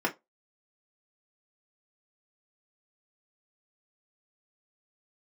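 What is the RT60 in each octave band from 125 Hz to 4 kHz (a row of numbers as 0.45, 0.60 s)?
0.15, 0.20, 0.20, 0.20, 0.15, 0.15 s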